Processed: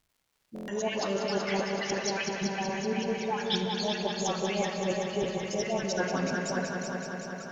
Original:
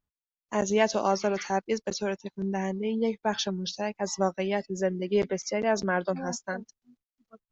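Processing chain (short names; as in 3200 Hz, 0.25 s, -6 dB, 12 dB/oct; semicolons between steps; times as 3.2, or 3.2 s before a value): random spectral dropouts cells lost 39%; bell 3000 Hz +7 dB 0.92 oct; notches 60/120/180 Hz; reverse; compressor, threshold -35 dBFS, peak gain reduction 16.5 dB; reverse; dispersion highs, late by 0.131 s, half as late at 1200 Hz; crackle 270/s -65 dBFS; multi-head echo 0.189 s, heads first and second, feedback 72%, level -9 dB; on a send at -5 dB: reverb RT60 3.1 s, pre-delay 7 ms; on the sum: stuck buffer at 0.54, samples 1024, times 5; gain +6 dB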